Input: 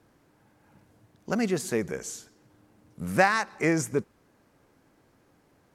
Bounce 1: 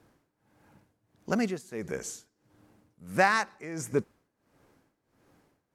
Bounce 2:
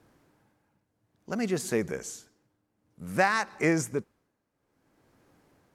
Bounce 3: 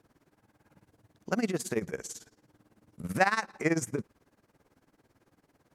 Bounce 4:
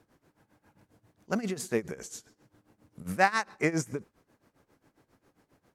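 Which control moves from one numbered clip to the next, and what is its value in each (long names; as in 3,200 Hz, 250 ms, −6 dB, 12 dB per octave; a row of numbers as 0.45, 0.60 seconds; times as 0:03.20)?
amplitude tremolo, speed: 1.5, 0.56, 18, 7.4 Hertz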